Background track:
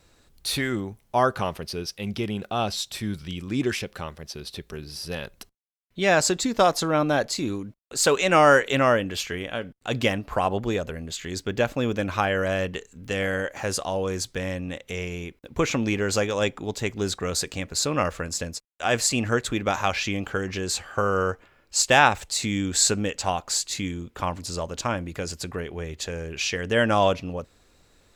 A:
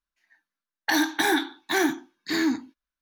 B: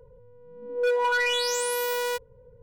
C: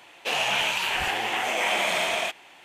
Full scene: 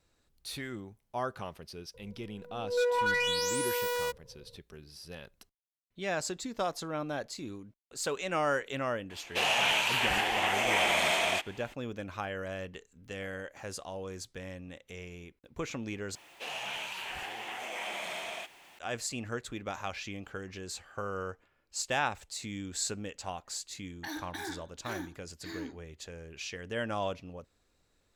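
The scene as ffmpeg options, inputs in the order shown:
-filter_complex "[3:a]asplit=2[s0][s1];[0:a]volume=0.211[s2];[s1]aeval=exprs='val(0)+0.5*0.00944*sgn(val(0))':c=same[s3];[s2]asplit=2[s4][s5];[s4]atrim=end=16.154[s6];[s3]atrim=end=2.64,asetpts=PTS-STARTPTS,volume=0.2[s7];[s5]atrim=start=18.786[s8];[2:a]atrim=end=2.62,asetpts=PTS-STARTPTS,volume=0.596,afade=t=in:d=0.004:c=hsin,afade=t=out:st=2.616:d=0.004:c=hsin,adelay=1940[s9];[s0]atrim=end=2.64,asetpts=PTS-STARTPTS,volume=0.75,afade=t=in:d=0.004:c=hsin,afade=t=out:st=2.636:d=0.004:c=hsin,adelay=9100[s10];[1:a]atrim=end=3.01,asetpts=PTS-STARTPTS,volume=0.133,afade=t=in:d=0.004:c=hsin,afade=t=out:st=3.006:d=0.004:c=hsin,adelay=23150[s11];[s6][s7]acrossfade=d=0.004:c1=hsin:c2=hsin[s12];[s12][s8]acrossfade=d=0.004:c1=hsin:c2=hsin[s13];[s13][s9][s10][s11]amix=inputs=4:normalize=0"

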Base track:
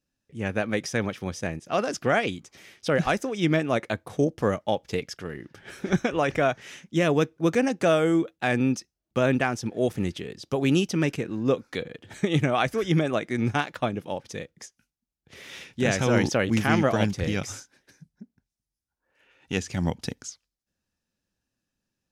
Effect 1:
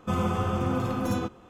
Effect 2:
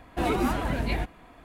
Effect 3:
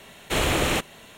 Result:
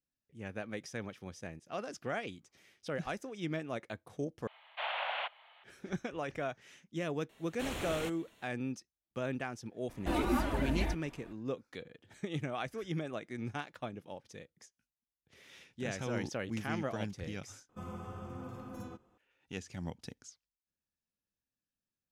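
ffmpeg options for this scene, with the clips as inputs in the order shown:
-filter_complex "[3:a]asplit=2[s0][s1];[0:a]volume=0.188[s2];[s0]highpass=f=390:t=q:w=0.5412,highpass=f=390:t=q:w=1.307,lowpass=f=3100:t=q:w=0.5176,lowpass=f=3100:t=q:w=0.7071,lowpass=f=3100:t=q:w=1.932,afreqshift=240[s3];[2:a]aecho=1:1:3.4:0.45[s4];[1:a]equalizer=f=3400:t=o:w=1.2:g=-4[s5];[s2]asplit=3[s6][s7][s8];[s6]atrim=end=4.474[s9];[s3]atrim=end=1.17,asetpts=PTS-STARTPTS,volume=0.282[s10];[s7]atrim=start=5.636:end=17.694[s11];[s5]atrim=end=1.49,asetpts=PTS-STARTPTS,volume=0.133[s12];[s8]atrim=start=19.176[s13];[s1]atrim=end=1.17,asetpts=PTS-STARTPTS,volume=0.133,afade=t=in:d=0.004:c=hsin,afade=t=out:st=1.166:d=0.004:c=hsin,adelay=7290[s14];[s4]atrim=end=1.44,asetpts=PTS-STARTPTS,volume=0.473,afade=t=in:d=0.004:c=hsin,afade=t=out:st=1.436:d=0.004:c=hsin,adelay=9890[s15];[s9][s10]acrossfade=d=0.004:c1=hsin:c2=hsin[s16];[s16][s11]acrossfade=d=0.004:c1=hsin:c2=hsin[s17];[s17][s12]acrossfade=d=0.004:c1=hsin:c2=hsin[s18];[s18][s13]acrossfade=d=0.004:c1=hsin:c2=hsin[s19];[s19][s14][s15]amix=inputs=3:normalize=0"

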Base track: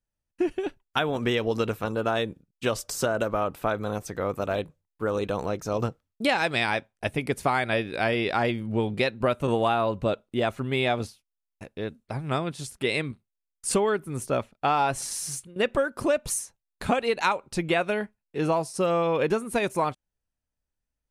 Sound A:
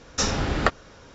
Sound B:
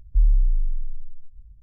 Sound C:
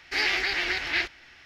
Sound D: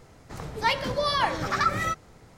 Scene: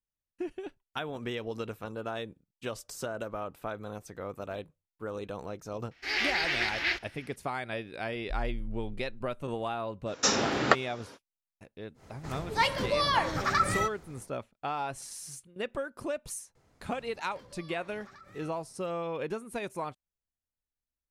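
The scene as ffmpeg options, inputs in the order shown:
-filter_complex "[4:a]asplit=2[s0][s1];[0:a]volume=0.299[s2];[3:a]dynaudnorm=f=150:g=3:m=2.51[s3];[1:a]highpass=220[s4];[s1]acompressor=threshold=0.0141:ratio=6:attack=3.2:release=140:knee=1:detection=peak[s5];[s3]atrim=end=1.45,asetpts=PTS-STARTPTS,volume=0.299,afade=t=in:d=0.004:c=hsin,afade=t=out:st=1.446:d=0.004:c=hsin,adelay=5910[s6];[2:a]atrim=end=1.62,asetpts=PTS-STARTPTS,volume=0.133,afade=t=in:d=0.004:c=hsin,afade=t=out:st=1.616:d=0.004:c=hsin,adelay=8150[s7];[s4]atrim=end=1.14,asetpts=PTS-STARTPTS,volume=0.944,afade=t=in:d=0.05,afade=t=out:st=1.09:d=0.05,adelay=10050[s8];[s0]atrim=end=2.37,asetpts=PTS-STARTPTS,volume=0.794,afade=t=in:d=0.1,afade=t=out:st=2.27:d=0.1,adelay=11940[s9];[s5]atrim=end=2.37,asetpts=PTS-STARTPTS,volume=0.2,afade=t=in:d=0.004:c=hsin,afade=t=out:st=2.366:d=0.004:c=hsin,adelay=16550[s10];[s2][s6][s7][s8][s9][s10]amix=inputs=6:normalize=0"

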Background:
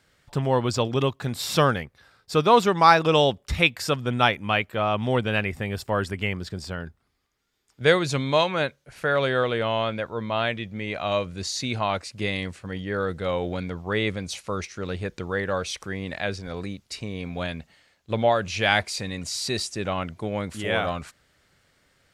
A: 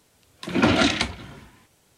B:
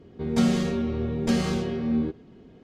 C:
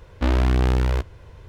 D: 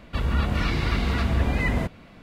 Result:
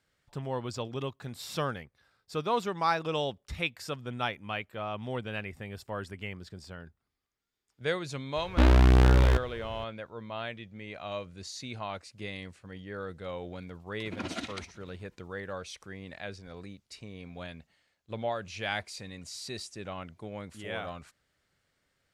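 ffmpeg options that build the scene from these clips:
-filter_complex "[0:a]volume=0.251[s0];[1:a]tremolo=f=16:d=0.74[s1];[3:a]atrim=end=1.48,asetpts=PTS-STARTPTS,volume=0.944,afade=t=in:d=0.004:c=hsin,afade=t=out:st=1.476:d=0.004:c=hsin,adelay=8360[s2];[s1]atrim=end=1.97,asetpts=PTS-STARTPTS,volume=0.168,afade=t=in:d=0.004:c=hsin,afade=t=out:st=1.966:d=0.004:c=hsin,adelay=13570[s3];[s0][s2][s3]amix=inputs=3:normalize=0"

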